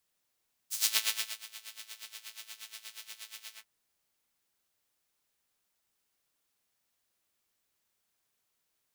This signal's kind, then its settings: synth patch with tremolo A3, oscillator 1 saw, detune 29 cents, sub -11 dB, noise -14 dB, filter highpass, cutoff 1800 Hz, Q 1.1, filter envelope 2 oct, attack 87 ms, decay 0.60 s, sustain -21 dB, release 0.12 s, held 2.83 s, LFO 8.4 Hz, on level 17 dB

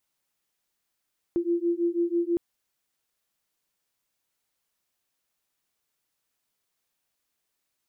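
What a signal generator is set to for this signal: beating tones 340 Hz, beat 6.1 Hz, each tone -26 dBFS 1.01 s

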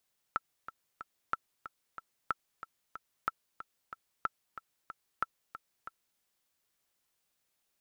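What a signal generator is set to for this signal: metronome 185 bpm, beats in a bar 3, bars 6, 1330 Hz, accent 13 dB -16.5 dBFS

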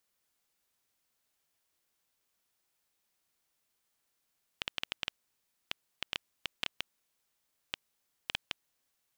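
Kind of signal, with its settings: random clicks 5.2/s -14.5 dBFS 4.04 s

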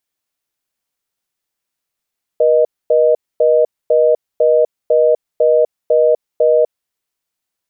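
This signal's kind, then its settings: call progress tone reorder tone, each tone -11 dBFS 4.41 s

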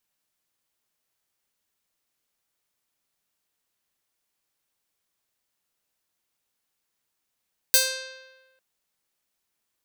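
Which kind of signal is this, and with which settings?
plucked string C5, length 0.85 s, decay 1.29 s, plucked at 0.48, bright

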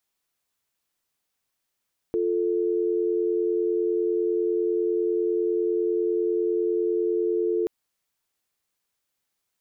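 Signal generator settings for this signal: call progress tone dial tone, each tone -24 dBFS 5.53 s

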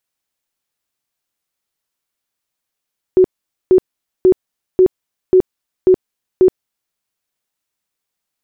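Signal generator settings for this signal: tone bursts 371 Hz, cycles 27, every 0.54 s, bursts 7, -5 dBFS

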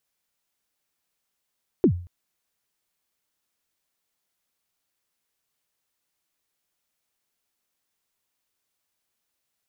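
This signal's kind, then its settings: kick drum length 0.23 s, from 420 Hz, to 88 Hz, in 83 ms, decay 0.43 s, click off, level -10.5 dB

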